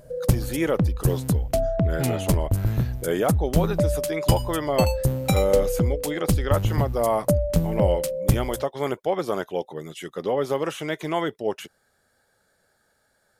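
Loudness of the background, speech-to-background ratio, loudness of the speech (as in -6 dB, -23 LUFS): -25.0 LUFS, -3.0 dB, -28.0 LUFS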